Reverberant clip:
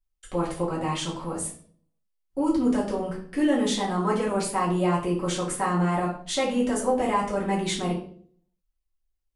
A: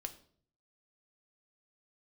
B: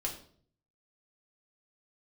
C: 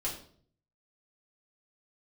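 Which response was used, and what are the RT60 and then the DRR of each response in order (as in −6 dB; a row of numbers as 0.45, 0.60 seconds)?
C; 0.55, 0.55, 0.55 seconds; 7.0, −1.0, −5.5 decibels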